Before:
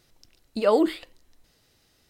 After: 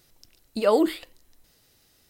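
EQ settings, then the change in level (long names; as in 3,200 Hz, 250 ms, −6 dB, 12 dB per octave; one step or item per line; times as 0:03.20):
high-shelf EQ 9,700 Hz +11.5 dB
0.0 dB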